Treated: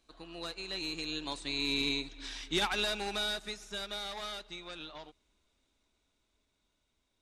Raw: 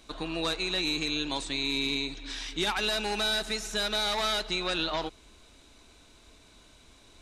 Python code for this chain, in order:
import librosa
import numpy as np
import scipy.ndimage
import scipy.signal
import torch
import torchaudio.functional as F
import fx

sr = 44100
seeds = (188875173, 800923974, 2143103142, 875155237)

y = fx.doppler_pass(x, sr, speed_mps=13, closest_m=12.0, pass_at_s=2.16)
y = fx.upward_expand(y, sr, threshold_db=-45.0, expansion=1.5)